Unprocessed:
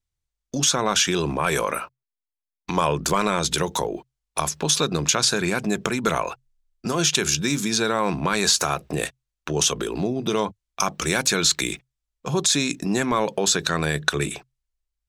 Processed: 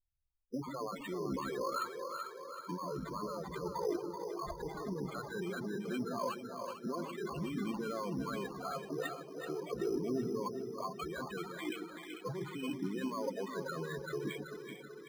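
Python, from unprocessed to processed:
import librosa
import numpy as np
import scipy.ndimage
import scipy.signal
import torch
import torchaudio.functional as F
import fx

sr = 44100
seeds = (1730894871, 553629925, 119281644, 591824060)

y = fx.over_compress(x, sr, threshold_db=-28.0, ratio=-1.0)
y = fx.peak_eq(y, sr, hz=110.0, db=-7.5, octaves=2.3)
y = fx.echo_feedback(y, sr, ms=446, feedback_pct=42, wet_db=-10.5)
y = np.clip(10.0 ** (20.0 / 20.0) * y, -1.0, 1.0) / 10.0 ** (20.0 / 20.0)
y = fx.spec_topn(y, sr, count=8)
y = fx.notch(y, sr, hz=3800.0, q=5.0)
y = np.repeat(y[::8], 8)[:len(y)]
y = fx.high_shelf(y, sr, hz=3800.0, db=-9.0)
y = fx.hum_notches(y, sr, base_hz=50, count=3)
y = fx.echo_split(y, sr, split_hz=380.0, low_ms=133, high_ms=381, feedback_pct=52, wet_db=-6.5)
y = y * librosa.db_to_amplitude(-5.5)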